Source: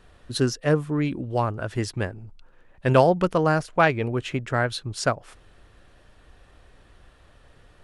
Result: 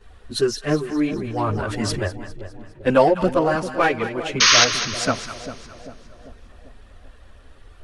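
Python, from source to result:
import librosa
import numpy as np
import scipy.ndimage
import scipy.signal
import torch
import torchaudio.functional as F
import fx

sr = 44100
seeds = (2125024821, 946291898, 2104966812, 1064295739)

p1 = fx.highpass(x, sr, hz=170.0, slope=12, at=(3.54, 4.26))
p2 = 10.0 ** (-21.0 / 20.0) * np.tanh(p1 / 10.0 ** (-21.0 / 20.0))
p3 = p1 + (p2 * 10.0 ** (-5.5 / 20.0))
p4 = fx.chorus_voices(p3, sr, voices=6, hz=0.72, base_ms=12, depth_ms=2.7, mix_pct=70)
p5 = fx.spec_paint(p4, sr, seeds[0], shape='noise', start_s=4.4, length_s=0.25, low_hz=950.0, high_hz=6600.0, level_db=-15.0)
p6 = fx.echo_split(p5, sr, split_hz=770.0, low_ms=394, high_ms=204, feedback_pct=52, wet_db=-11)
p7 = fx.sustainer(p6, sr, db_per_s=22.0, at=(1.13, 2.08))
y = p7 * 10.0 ** (1.5 / 20.0)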